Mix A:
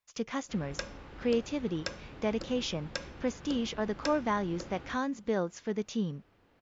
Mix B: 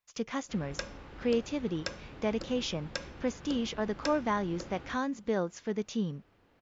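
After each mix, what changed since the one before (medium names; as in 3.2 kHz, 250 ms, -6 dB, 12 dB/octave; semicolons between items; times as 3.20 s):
no change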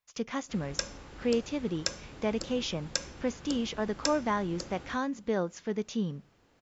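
speech: send on; background: remove low-pass 3.5 kHz 12 dB/octave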